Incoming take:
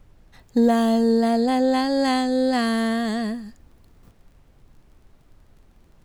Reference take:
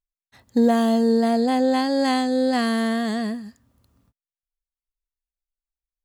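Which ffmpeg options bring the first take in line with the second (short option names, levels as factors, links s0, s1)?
-af "adeclick=t=4,agate=range=0.0891:threshold=0.00447,asetnsamples=n=441:p=0,asendcmd='4.03 volume volume -12dB',volume=1"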